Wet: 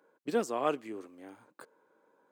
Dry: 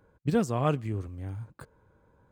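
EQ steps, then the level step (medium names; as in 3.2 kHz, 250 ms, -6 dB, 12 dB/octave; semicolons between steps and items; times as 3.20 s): high-pass 280 Hz 24 dB/octave; -1.5 dB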